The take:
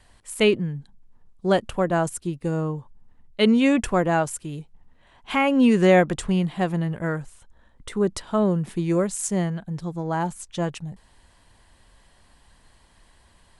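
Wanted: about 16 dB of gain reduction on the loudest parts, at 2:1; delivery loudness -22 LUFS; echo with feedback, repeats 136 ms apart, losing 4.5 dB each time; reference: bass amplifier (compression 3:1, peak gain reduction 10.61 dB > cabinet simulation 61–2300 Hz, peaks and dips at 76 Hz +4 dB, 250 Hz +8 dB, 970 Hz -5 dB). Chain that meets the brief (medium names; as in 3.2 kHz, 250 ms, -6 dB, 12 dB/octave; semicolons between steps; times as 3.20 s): compression 2:1, threshold -44 dBFS; feedback delay 136 ms, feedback 60%, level -4.5 dB; compression 3:1, threshold -40 dBFS; cabinet simulation 61–2300 Hz, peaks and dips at 76 Hz +4 dB, 250 Hz +8 dB, 970 Hz -5 dB; trim +19.5 dB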